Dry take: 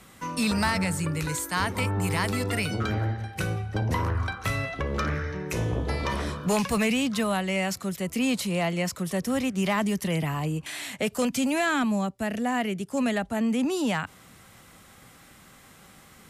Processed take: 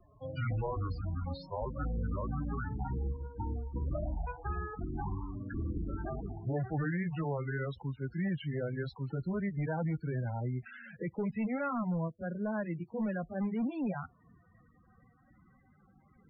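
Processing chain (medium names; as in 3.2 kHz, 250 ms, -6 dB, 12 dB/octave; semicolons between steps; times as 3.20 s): pitch bend over the whole clip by -11 st ending unshifted; distance through air 180 m; in parallel at -11 dB: integer overflow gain 21 dB; on the sum: loudest bins only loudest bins 16; trim -8 dB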